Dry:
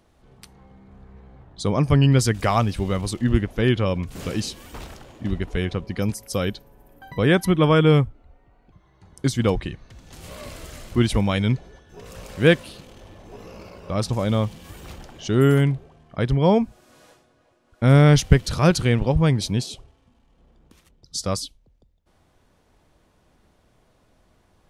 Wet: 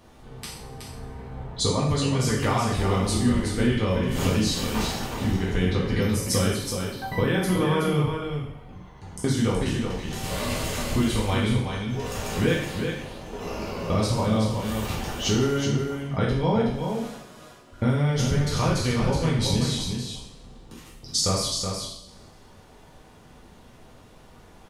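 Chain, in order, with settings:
peak hold with a decay on every bin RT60 0.33 s
downward compressor 12 to 1, threshold −28 dBFS, peak gain reduction 21.5 dB
0:12.65–0:13.41: tube saturation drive 37 dB, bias 0.8
on a send: single-tap delay 372 ms −6 dB
on the sum: coupled-rooms reverb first 0.61 s, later 1.9 s, from −18 dB, DRR −3.5 dB
level +4 dB

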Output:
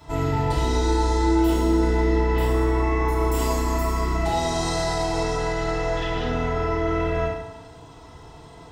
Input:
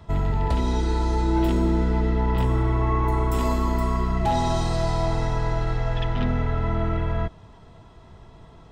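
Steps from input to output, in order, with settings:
bass and treble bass −5 dB, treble +8 dB
brickwall limiter −21 dBFS, peak gain reduction 8.5 dB
feedback delay network reverb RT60 0.95 s, low-frequency decay 0.85×, high-frequency decay 0.8×, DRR −8.5 dB
level −3 dB

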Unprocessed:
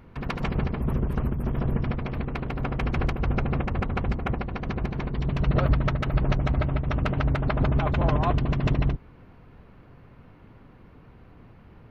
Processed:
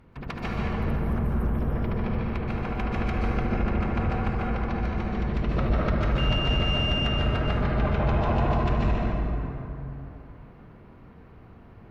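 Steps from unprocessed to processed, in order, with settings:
0:06.17–0:07.06: steady tone 2,800 Hz −25 dBFS
dense smooth reverb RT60 3.2 s, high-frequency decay 0.45×, pre-delay 115 ms, DRR −5 dB
harmonic generator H 5 −23 dB, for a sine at −4.5 dBFS
level −7.5 dB

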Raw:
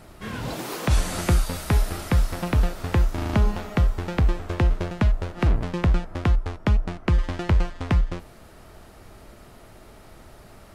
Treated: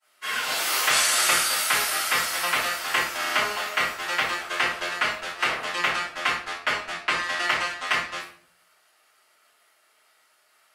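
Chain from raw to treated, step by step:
high-pass filter 1,500 Hz 12 dB per octave
downward expander −44 dBFS
rectangular room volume 51 cubic metres, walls mixed, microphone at 2.9 metres
level +1 dB

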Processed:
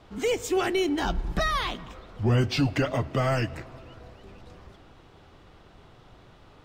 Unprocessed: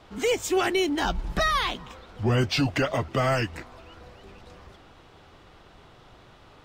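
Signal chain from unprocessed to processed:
low-shelf EQ 420 Hz +5 dB
on a send: convolution reverb RT60 2.6 s, pre-delay 5 ms, DRR 18 dB
on the sum: level −3.5 dB

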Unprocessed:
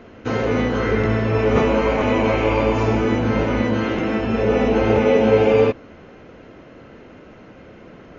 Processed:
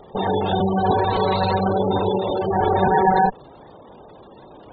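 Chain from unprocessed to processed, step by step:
lower of the sound and its delayed copy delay 0.42 ms
gate on every frequency bin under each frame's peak −15 dB strong
wrong playback speed 45 rpm record played at 78 rpm

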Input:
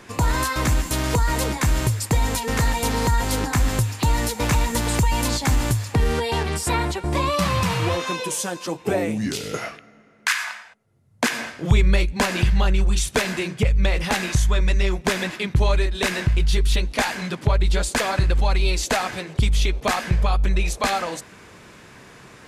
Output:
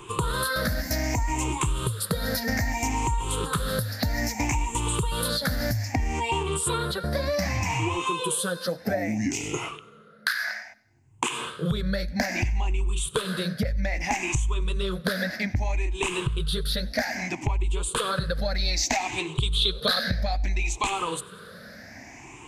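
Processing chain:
rippled gain that drifts along the octave scale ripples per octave 0.67, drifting +0.62 Hz, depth 19 dB
downward compressor, threshold −20 dBFS, peak gain reduction 11.5 dB
0:18.58–0:20.87: parametric band 3,900 Hz +13 dB 0.48 octaves
feedback echo with a high-pass in the loop 95 ms, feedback 46%, level −23.5 dB
level −3 dB

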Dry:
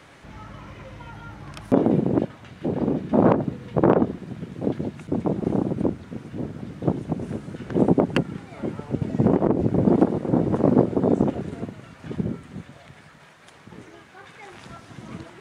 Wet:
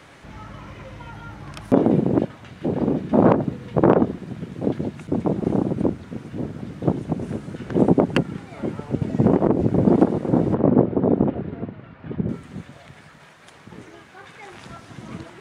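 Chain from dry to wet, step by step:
0:10.54–0:12.29: high-frequency loss of the air 380 metres
level +2 dB

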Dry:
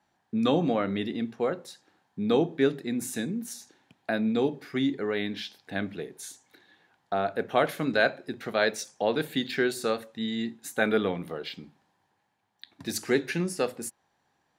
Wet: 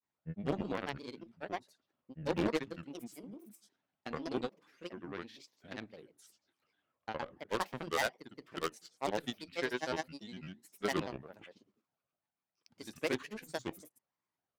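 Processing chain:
harmonic generator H 7 −19 dB, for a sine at −8 dBFS
wave folding −15 dBFS
granular cloud, spray 100 ms, pitch spread up and down by 7 semitones
level −5 dB

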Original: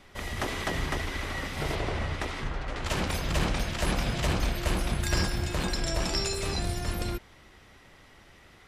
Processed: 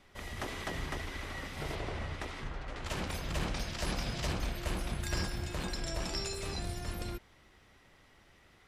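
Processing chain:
0:03.54–0:04.32: parametric band 5,100 Hz +6 dB 0.65 octaves
level −7.5 dB

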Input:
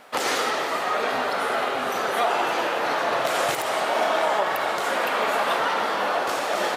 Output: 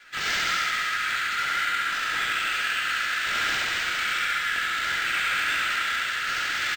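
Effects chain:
Butterworth high-pass 1,400 Hz 72 dB per octave
comb filter 3 ms, depth 59%
pitch vibrato 11 Hz 48 cents
chorus effect 1.8 Hz, delay 16.5 ms, depth 6.2 ms
soft clipping −27.5 dBFS, distortion −15 dB
flutter between parallel walls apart 11.7 metres, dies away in 1.1 s
on a send at −4.5 dB: convolution reverb RT60 1.2 s, pre-delay 88 ms
on the sum: linearly interpolated sample-rate reduction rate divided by 4×
level +5.5 dB

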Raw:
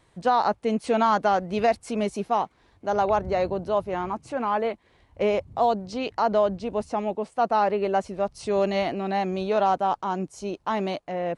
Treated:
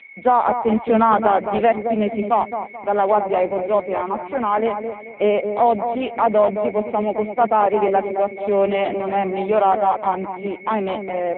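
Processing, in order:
steady tone 2,200 Hz −41 dBFS
elliptic high-pass filter 210 Hz, stop band 70 dB
on a send: delay with a low-pass on its return 216 ms, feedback 32%, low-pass 1,200 Hz, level −7 dB
on the sum: level +6.5 dB
AMR narrowband 5.9 kbit/s 8,000 Hz

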